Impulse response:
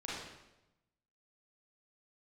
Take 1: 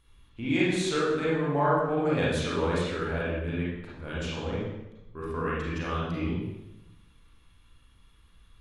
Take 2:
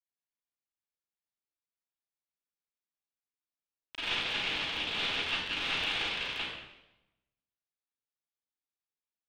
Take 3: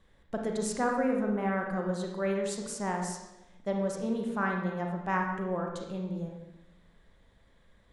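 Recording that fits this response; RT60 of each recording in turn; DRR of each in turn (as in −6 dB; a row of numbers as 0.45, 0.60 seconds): 1; 0.95, 0.95, 0.95 seconds; −7.5, −15.5, 0.5 decibels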